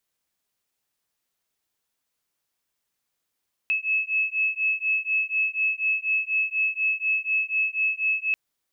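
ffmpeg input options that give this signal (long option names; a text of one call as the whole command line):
ffmpeg -f lavfi -i "aevalsrc='0.0562*(sin(2*PI*2590*t)+sin(2*PI*2594.1*t))':duration=4.64:sample_rate=44100" out.wav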